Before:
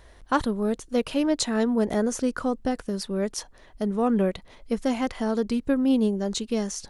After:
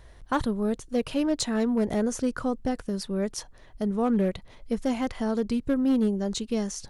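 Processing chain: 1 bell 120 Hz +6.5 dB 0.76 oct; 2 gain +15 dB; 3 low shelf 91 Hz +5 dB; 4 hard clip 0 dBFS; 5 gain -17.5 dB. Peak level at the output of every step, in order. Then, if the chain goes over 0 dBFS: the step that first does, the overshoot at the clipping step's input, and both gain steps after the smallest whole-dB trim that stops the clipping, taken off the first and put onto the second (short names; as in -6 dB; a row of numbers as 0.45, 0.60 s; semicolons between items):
-9.0, +6.0, +6.5, 0.0, -17.5 dBFS; step 2, 6.5 dB; step 2 +8 dB, step 5 -10.5 dB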